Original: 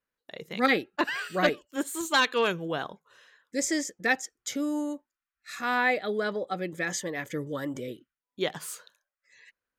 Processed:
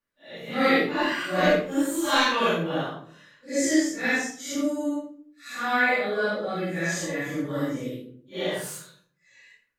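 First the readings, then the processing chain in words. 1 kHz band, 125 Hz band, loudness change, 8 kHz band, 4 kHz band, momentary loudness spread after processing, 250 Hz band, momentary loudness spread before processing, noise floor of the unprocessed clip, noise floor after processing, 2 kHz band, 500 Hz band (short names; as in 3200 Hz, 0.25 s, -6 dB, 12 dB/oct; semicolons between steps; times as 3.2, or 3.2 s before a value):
+3.0 dB, +6.5 dB, +3.5 dB, +2.0 dB, +3.0 dB, 16 LU, +5.5 dB, 15 LU, under -85 dBFS, -69 dBFS, +3.0 dB, +4.0 dB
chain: phase scrambler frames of 0.2 s; shoebox room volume 620 m³, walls furnished, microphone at 2.4 m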